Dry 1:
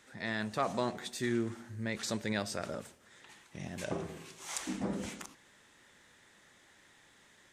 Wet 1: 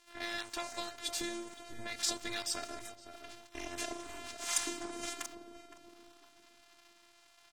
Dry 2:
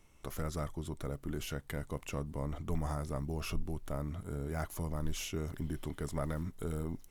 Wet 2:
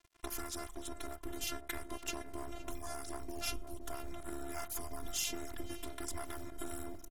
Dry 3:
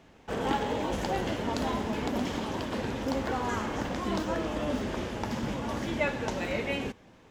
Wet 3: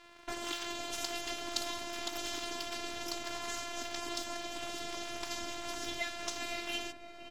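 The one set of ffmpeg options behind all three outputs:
-filter_complex "[0:a]afftfilt=real='hypot(re,im)*cos(PI*b)':imag='0':win_size=512:overlap=0.75,acrossover=split=3200[s0][s1];[s0]acompressor=threshold=0.00501:ratio=16[s2];[s2][s1]amix=inputs=2:normalize=0,bandreject=f=117.8:t=h:w=4,bandreject=f=235.6:t=h:w=4,bandreject=f=353.4:t=h:w=4,bandreject=f=471.2:t=h:w=4,bandreject=f=589:t=h:w=4,bandreject=f=706.8:t=h:w=4,bandreject=f=824.6:t=h:w=4,bandreject=f=942.4:t=h:w=4,bandreject=f=1060.2:t=h:w=4,bandreject=f=1178:t=h:w=4,bandreject=f=1295.8:t=h:w=4,bandreject=f=1413.6:t=h:w=4,bandreject=f=1531.4:t=h:w=4,bandreject=f=1649.2:t=h:w=4,bandreject=f=1767:t=h:w=4,bandreject=f=1884.8:t=h:w=4,bandreject=f=2002.6:t=h:w=4,bandreject=f=2120.4:t=h:w=4,bandreject=f=2238.2:t=h:w=4,bandreject=f=2356:t=h:w=4,bandreject=f=2473.8:t=h:w=4,bandreject=f=2591.6:t=h:w=4,bandreject=f=2709.4:t=h:w=4,bandreject=f=2827.2:t=h:w=4,bandreject=f=2945:t=h:w=4,bandreject=f=3062.8:t=h:w=4,bandreject=f=3180.6:t=h:w=4,bandreject=f=3298.4:t=h:w=4,bandreject=f=3416.2:t=h:w=4,bandreject=f=3534:t=h:w=4,aeval=exprs='sgn(val(0))*max(abs(val(0))-0.00119,0)':c=same,asplit=2[s3][s4];[s4]adelay=515,lowpass=f=940:p=1,volume=0.447,asplit=2[s5][s6];[s6]adelay=515,lowpass=f=940:p=1,volume=0.43,asplit=2[s7][s8];[s8]adelay=515,lowpass=f=940:p=1,volume=0.43,asplit=2[s9][s10];[s10]adelay=515,lowpass=f=940:p=1,volume=0.43,asplit=2[s11][s12];[s12]adelay=515,lowpass=f=940:p=1,volume=0.43[s13];[s3][s5][s7][s9][s11][s13]amix=inputs=6:normalize=0,volume=3.16" -ar 48000 -c:a aac -b:a 48k

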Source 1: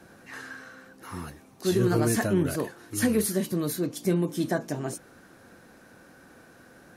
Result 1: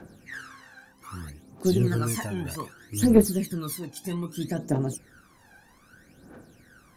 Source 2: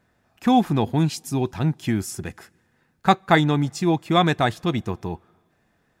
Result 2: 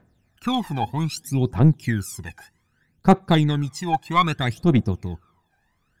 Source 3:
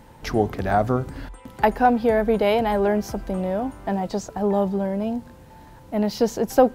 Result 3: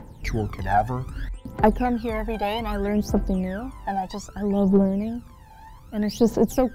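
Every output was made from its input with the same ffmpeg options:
-af "aphaser=in_gain=1:out_gain=1:delay=1.3:decay=0.8:speed=0.63:type=triangular,aeval=exprs='1.58*(cos(1*acos(clip(val(0)/1.58,-1,1)))-cos(1*PI/2))+0.126*(cos(4*acos(clip(val(0)/1.58,-1,1)))-cos(4*PI/2))':c=same,volume=0.531"

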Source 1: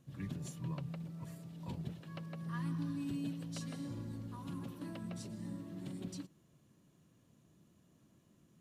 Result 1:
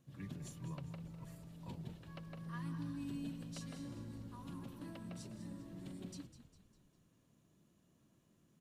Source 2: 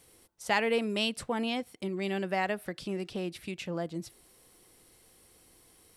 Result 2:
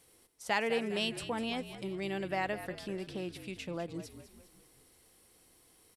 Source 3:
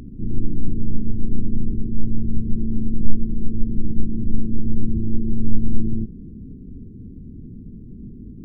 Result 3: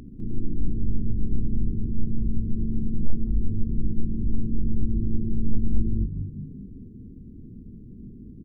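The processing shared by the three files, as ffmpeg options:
-filter_complex "[0:a]lowshelf=f=170:g=-3,asoftclip=type=hard:threshold=0.501,asplit=2[s0][s1];[s1]asplit=5[s2][s3][s4][s5][s6];[s2]adelay=201,afreqshift=-50,volume=0.251[s7];[s3]adelay=402,afreqshift=-100,volume=0.12[s8];[s4]adelay=603,afreqshift=-150,volume=0.0575[s9];[s5]adelay=804,afreqshift=-200,volume=0.0279[s10];[s6]adelay=1005,afreqshift=-250,volume=0.0133[s11];[s7][s8][s9][s10][s11]amix=inputs=5:normalize=0[s12];[s0][s12]amix=inputs=2:normalize=0,volume=0.668"

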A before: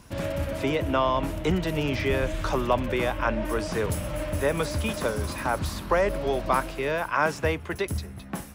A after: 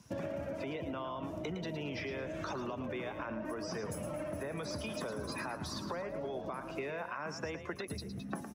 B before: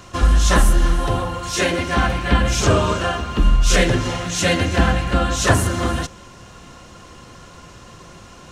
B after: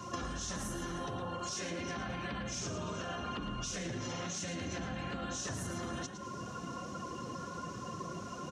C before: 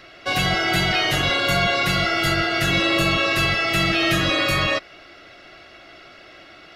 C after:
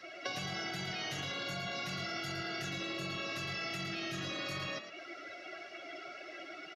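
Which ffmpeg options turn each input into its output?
-filter_complex "[0:a]afftdn=nr=16:nf=-38,highpass=160,equalizer=f=5900:t=o:w=0.57:g=9.5,acrossover=split=210[s0][s1];[s1]acompressor=threshold=0.0316:ratio=2.5[s2];[s0][s2]amix=inputs=2:normalize=0,alimiter=limit=0.0668:level=0:latency=1,acompressor=threshold=0.00891:ratio=12,asplit=5[s3][s4][s5][s6][s7];[s4]adelay=111,afreqshift=40,volume=0.335[s8];[s5]adelay=222,afreqshift=80,volume=0.107[s9];[s6]adelay=333,afreqshift=120,volume=0.0343[s10];[s7]adelay=444,afreqshift=160,volume=0.011[s11];[s3][s8][s9][s10][s11]amix=inputs=5:normalize=0,volume=1.68"

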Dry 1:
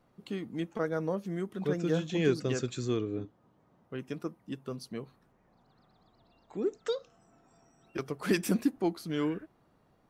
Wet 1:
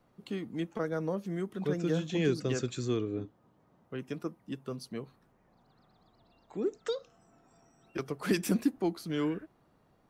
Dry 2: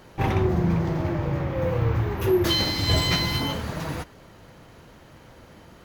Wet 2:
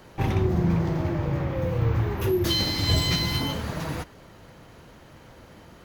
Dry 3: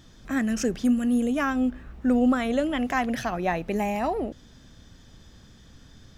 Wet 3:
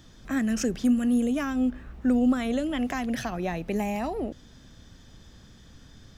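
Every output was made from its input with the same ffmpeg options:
-filter_complex "[0:a]acrossover=split=350|3000[s0][s1][s2];[s1]acompressor=threshold=0.0282:ratio=6[s3];[s0][s3][s2]amix=inputs=3:normalize=0"

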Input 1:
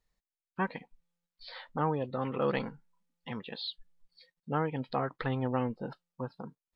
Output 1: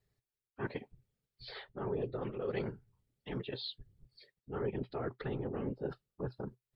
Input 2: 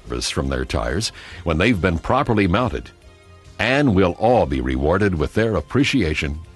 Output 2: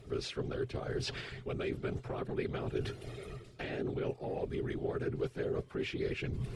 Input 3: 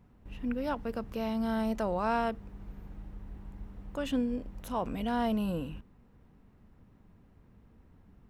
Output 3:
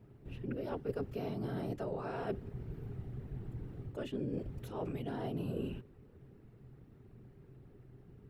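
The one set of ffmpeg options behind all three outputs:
-filter_complex "[0:a]acrossover=split=450|7200[s0][s1][s2];[s0]acompressor=threshold=0.0891:ratio=4[s3];[s1]acompressor=threshold=0.0891:ratio=4[s4];[s2]acompressor=threshold=0.00141:ratio=4[s5];[s3][s4][s5]amix=inputs=3:normalize=0,afftfilt=real='hypot(re,im)*cos(2*PI*random(0))':imag='hypot(re,im)*sin(2*PI*random(1))':win_size=512:overlap=0.75,areverse,acompressor=threshold=0.00794:ratio=16,areverse,equalizer=f=125:t=o:w=0.33:g=10,equalizer=f=400:t=o:w=0.33:g=12,equalizer=f=1000:t=o:w=0.33:g=-6,equalizer=f=6300:t=o:w=0.33:g=-4,volume=1.78"

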